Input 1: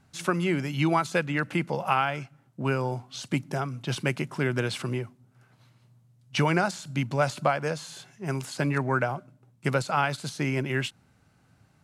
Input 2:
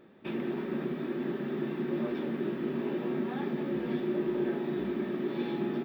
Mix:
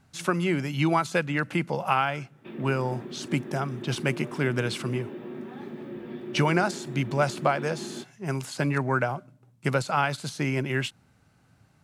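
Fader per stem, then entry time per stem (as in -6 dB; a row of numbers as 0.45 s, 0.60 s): +0.5 dB, -6.0 dB; 0.00 s, 2.20 s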